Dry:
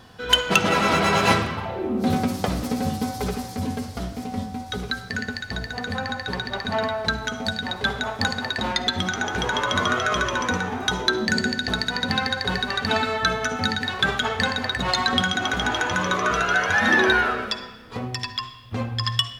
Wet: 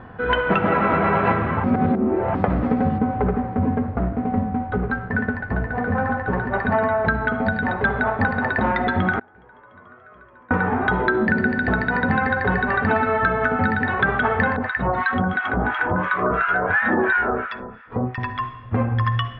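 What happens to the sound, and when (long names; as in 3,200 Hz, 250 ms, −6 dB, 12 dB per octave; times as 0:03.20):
0:01.64–0:02.35: reverse
0:02.98–0:06.54: running median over 15 samples
0:09.19–0:10.51: gate with flip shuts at −24 dBFS, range −32 dB
0:14.56–0:18.18: two-band tremolo in antiphase 2.9 Hz, depth 100%, crossover 1,100 Hz
whole clip: low-pass filter 1,900 Hz 24 dB per octave; downward compressor, threshold −24 dBFS; level +8.5 dB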